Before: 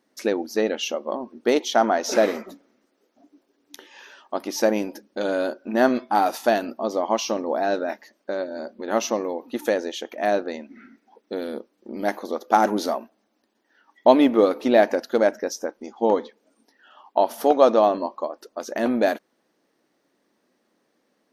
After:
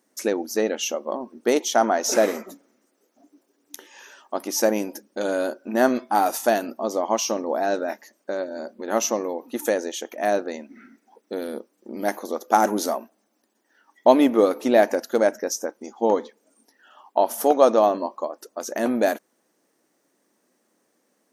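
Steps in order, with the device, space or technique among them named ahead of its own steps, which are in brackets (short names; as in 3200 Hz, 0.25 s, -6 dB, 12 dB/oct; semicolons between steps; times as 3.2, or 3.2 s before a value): budget condenser microphone (HPF 110 Hz 6 dB/oct; resonant high shelf 5600 Hz +8 dB, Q 1.5)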